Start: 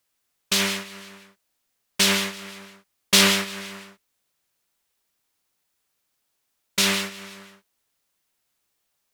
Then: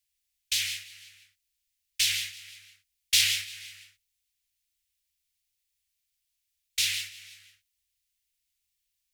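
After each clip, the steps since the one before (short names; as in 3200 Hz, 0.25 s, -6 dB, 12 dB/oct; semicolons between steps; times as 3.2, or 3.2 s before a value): inverse Chebyshev band-stop 220–820 Hz, stop band 60 dB; low shelf 220 Hz +7 dB; gain -5 dB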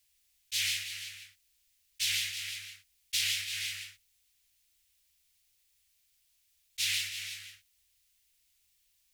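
auto swell 0.188 s; compressor 16:1, threshold -36 dBFS, peak gain reduction 13 dB; gain +8.5 dB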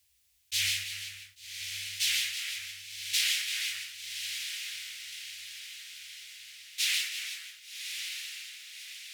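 high-pass sweep 62 Hz -> 650 Hz, 1.5–2.35; diffused feedback echo 1.14 s, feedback 52%, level -6.5 dB; gain +2 dB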